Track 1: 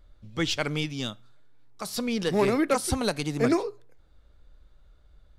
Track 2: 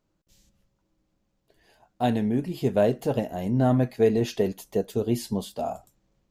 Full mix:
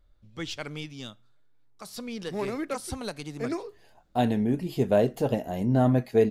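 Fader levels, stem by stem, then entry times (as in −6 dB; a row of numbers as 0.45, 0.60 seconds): −8.0, −0.5 decibels; 0.00, 2.15 seconds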